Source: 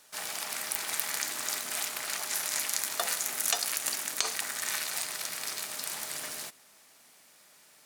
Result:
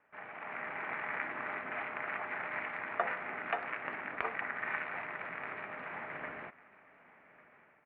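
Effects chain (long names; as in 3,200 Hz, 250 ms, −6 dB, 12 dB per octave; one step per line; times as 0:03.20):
Butterworth low-pass 2,300 Hz 48 dB per octave
automatic gain control gain up to 7.5 dB
single-tap delay 1,150 ms −21.5 dB
level −5.5 dB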